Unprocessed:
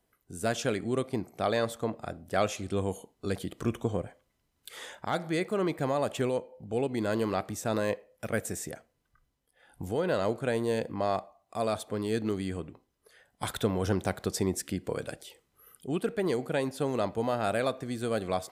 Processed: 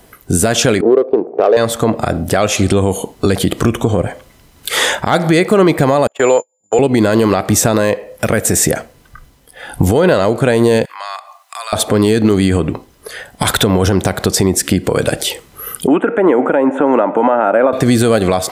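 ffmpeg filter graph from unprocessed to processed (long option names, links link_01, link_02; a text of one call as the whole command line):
ffmpeg -i in.wav -filter_complex "[0:a]asettb=1/sr,asplit=3[link_01][link_02][link_03];[link_01]atrim=end=0.814[link_04];[link_02]atrim=start=0.81:end=1.57,asetpts=PTS-STARTPTS,afade=type=in:duration=0.004:curve=qsin,afade=type=out:start_time=0.756:duration=0.004:curve=qsin,bandreject=frequency=2100:width=5.5,adynamicsmooth=sensitivity=1:basefreq=640,highpass=frequency=440:width_type=q:width=4[link_05];[link_03]atrim=start=1.566[link_06];[link_04][link_05]acrossfade=duration=0.004:curve1=hsin:curve2=qsin[link_07];[link_07][link_06]acrossfade=duration=0.004:curve1=qsin:curve2=hsin,asettb=1/sr,asplit=3[link_08][link_09][link_10];[link_08]atrim=end=6.074[link_11];[link_09]atrim=start=6.07:end=6.79,asetpts=PTS-STARTPTS,afade=type=in:duration=0.004:curve=qsin,afade=type=out:start_time=0.716:duration=0.004:curve=qsin,aeval=exprs='val(0)+0.0178*sin(2*PI*7100*n/s)':channel_layout=same,agate=range=-47dB:threshold=-33dB:ratio=16:release=100:detection=peak,acrossover=split=390 3100:gain=0.1 1 0.178[link_12][link_13][link_14];[link_12][link_13][link_14]amix=inputs=3:normalize=0[link_15];[link_10]atrim=start=6.786[link_16];[link_11][link_15]acrossfade=duration=0.004:curve1=hsin:curve2=qsin[link_17];[link_17][link_16]acrossfade=duration=0.004:curve1=qsin:curve2=hsin,asettb=1/sr,asplit=3[link_18][link_19][link_20];[link_18]atrim=end=10.854[link_21];[link_19]atrim=start=10.85:end=11.73,asetpts=PTS-STARTPTS,afade=type=in:duration=0.004:curve=qsin,afade=type=out:start_time=0.876:duration=0.004:curve=qsin,highpass=frequency=1100:width=0.5412,highpass=frequency=1100:width=1.3066,acompressor=threshold=-60dB:ratio=2.5:attack=3.2:release=140:knee=1:detection=peak[link_22];[link_20]atrim=start=11.726[link_23];[link_21][link_22]acrossfade=duration=0.004:curve1=hsin:curve2=qsin[link_24];[link_24][link_23]acrossfade=duration=0.004:curve1=qsin:curve2=hsin,asettb=1/sr,asplit=3[link_25][link_26][link_27];[link_25]atrim=end=15.874[link_28];[link_26]atrim=start=15.87:end=17.73,asetpts=PTS-STARTPTS,afade=type=in:duration=0.004:curve=qsin,afade=type=out:start_time=1.856:duration=0.004:curve=qsin,acrossover=split=1300|3100[link_29][link_30][link_31];[link_29]acompressor=threshold=-37dB:ratio=4[link_32];[link_30]acompressor=threshold=-52dB:ratio=4[link_33];[link_31]acompressor=threshold=-58dB:ratio=4[link_34];[link_32][link_33][link_34]amix=inputs=3:normalize=0,asuperstop=centerf=4700:order=4:qfactor=0.76,highpass=frequency=210:width=0.5412,highpass=frequency=210:width=1.3066,equalizer=frequency=290:width_type=q:width=4:gain=8,equalizer=frequency=560:width_type=q:width=4:gain=7,equalizer=frequency=890:width_type=q:width=4:gain=10,equalizer=frequency=1400:width_type=q:width=4:gain=8,lowpass=frequency=6000:width=0.5412,lowpass=frequency=6000:width=1.3066[link_35];[link_27]atrim=start=17.726[link_36];[link_28][link_35]acrossfade=duration=0.004:curve1=hsin:curve2=qsin[link_37];[link_37][link_36]acrossfade=duration=0.004:curve1=qsin:curve2=hsin,acompressor=threshold=-35dB:ratio=10,alimiter=level_in=31dB:limit=-1dB:release=50:level=0:latency=1,volume=-1dB" out.wav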